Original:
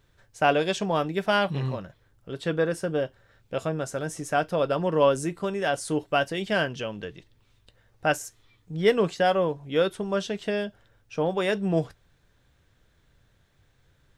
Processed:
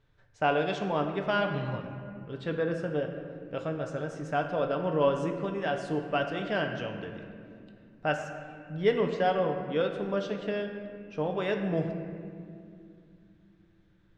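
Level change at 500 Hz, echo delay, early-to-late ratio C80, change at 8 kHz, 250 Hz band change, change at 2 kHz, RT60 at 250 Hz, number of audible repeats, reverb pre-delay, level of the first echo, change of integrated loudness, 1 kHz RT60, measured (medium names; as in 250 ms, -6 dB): -4.0 dB, no echo, 7.0 dB, under -15 dB, -3.0 dB, -4.5 dB, 4.0 s, no echo, 5 ms, no echo, -4.5 dB, 2.1 s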